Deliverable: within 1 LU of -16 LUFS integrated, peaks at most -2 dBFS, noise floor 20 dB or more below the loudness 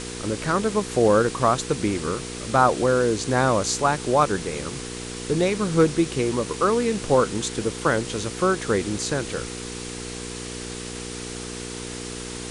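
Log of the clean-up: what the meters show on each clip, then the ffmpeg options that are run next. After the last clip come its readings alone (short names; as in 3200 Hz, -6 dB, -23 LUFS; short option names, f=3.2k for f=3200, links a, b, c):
hum 60 Hz; harmonics up to 480 Hz; hum level -34 dBFS; noise floor -34 dBFS; noise floor target -44 dBFS; loudness -24.0 LUFS; peak -4.5 dBFS; loudness target -16.0 LUFS
-> -af "bandreject=f=60:t=h:w=4,bandreject=f=120:t=h:w=4,bandreject=f=180:t=h:w=4,bandreject=f=240:t=h:w=4,bandreject=f=300:t=h:w=4,bandreject=f=360:t=h:w=4,bandreject=f=420:t=h:w=4,bandreject=f=480:t=h:w=4"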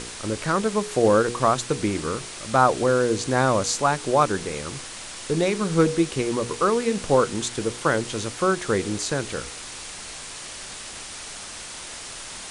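hum none; noise floor -38 dBFS; noise floor target -43 dBFS
-> -af "afftdn=nr=6:nf=-38"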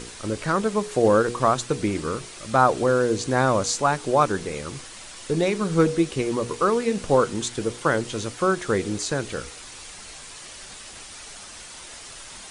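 noise floor -41 dBFS; noise floor target -43 dBFS
-> -af "afftdn=nr=6:nf=-41"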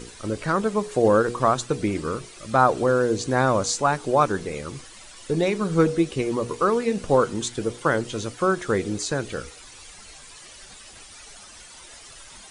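noise floor -45 dBFS; loudness -23.0 LUFS; peak -4.5 dBFS; loudness target -16.0 LUFS
-> -af "volume=7dB,alimiter=limit=-2dB:level=0:latency=1"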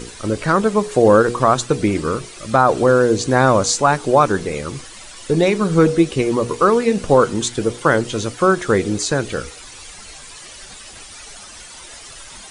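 loudness -16.5 LUFS; peak -2.0 dBFS; noise floor -38 dBFS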